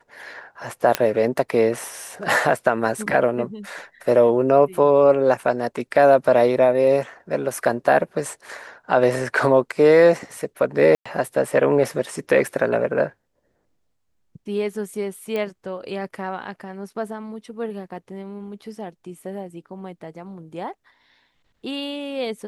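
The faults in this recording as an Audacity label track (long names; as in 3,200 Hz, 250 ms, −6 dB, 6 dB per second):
0.950000	0.950000	click −3 dBFS
10.950000	11.050000	drop-out 105 ms
15.360000	15.360000	click −15 dBFS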